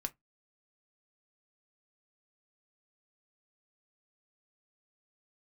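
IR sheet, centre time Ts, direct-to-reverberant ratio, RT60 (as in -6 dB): 4 ms, 7.0 dB, 0.15 s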